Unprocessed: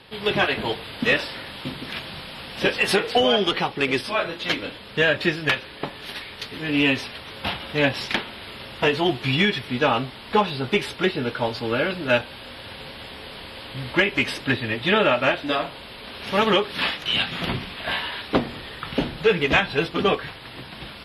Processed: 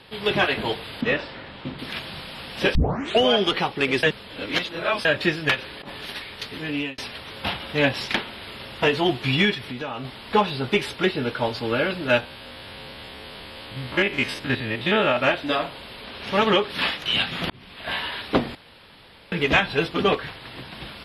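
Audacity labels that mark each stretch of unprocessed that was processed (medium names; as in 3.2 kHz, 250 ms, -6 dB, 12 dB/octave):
1.010000	1.790000	tape spacing loss at 10 kHz 21 dB
2.750000	2.750000	tape start 0.45 s
4.030000	5.050000	reverse
5.560000	6.060000	compressor with a negative ratio -36 dBFS
6.570000	6.980000	fade out
9.540000	10.050000	compression 4:1, threshold -29 dBFS
12.200000	15.170000	spectrogram pixelated in time every 50 ms
16.040000	16.700000	treble shelf 11 kHz -11 dB
17.500000	18.040000	fade in
18.550000	19.320000	room tone
20.120000	20.740000	loudspeaker Doppler distortion depth 0.2 ms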